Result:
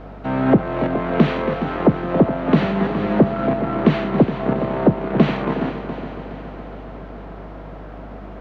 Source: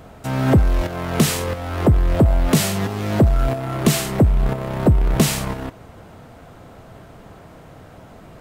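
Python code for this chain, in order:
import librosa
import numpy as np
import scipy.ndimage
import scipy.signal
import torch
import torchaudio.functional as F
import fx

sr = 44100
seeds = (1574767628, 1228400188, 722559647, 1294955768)

p1 = scipy.ndimage.median_filter(x, 5, mode='constant')
p2 = scipy.signal.sosfilt(scipy.signal.butter(4, 170.0, 'highpass', fs=sr, output='sos'), p1)
p3 = fx.high_shelf(p2, sr, hz=4500.0, db=-9.5)
p4 = fx.notch(p3, sr, hz=5100.0, q=7.9)
p5 = fx.rider(p4, sr, range_db=10, speed_s=0.5)
p6 = p4 + F.gain(torch.from_numpy(p5), -2.0).numpy()
p7 = fx.add_hum(p6, sr, base_hz=50, snr_db=19)
p8 = fx.quant_dither(p7, sr, seeds[0], bits=8, dither='none')
p9 = fx.air_absorb(p8, sr, metres=310.0)
p10 = fx.echo_heads(p9, sr, ms=139, heads='second and third', feedback_pct=61, wet_db=-11.5)
y = F.gain(torch.from_numpy(p10), -1.0).numpy()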